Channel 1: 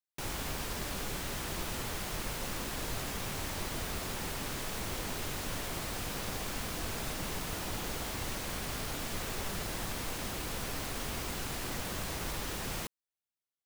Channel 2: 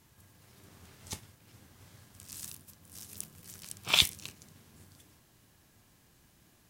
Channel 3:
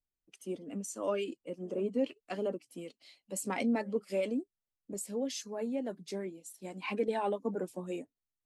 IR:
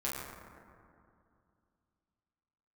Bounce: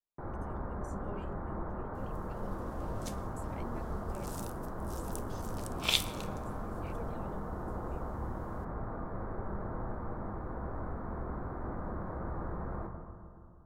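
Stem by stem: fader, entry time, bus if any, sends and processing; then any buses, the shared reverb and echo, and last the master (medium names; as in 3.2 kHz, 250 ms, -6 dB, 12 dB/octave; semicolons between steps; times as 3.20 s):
-4.0 dB, 0.00 s, send -5 dB, inverse Chebyshev low-pass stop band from 2.6 kHz, stop band 40 dB
-6.5 dB, 1.95 s, send -11.5 dB, none
-18.0 dB, 0.00 s, no send, none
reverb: on, RT60 2.4 s, pre-delay 7 ms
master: none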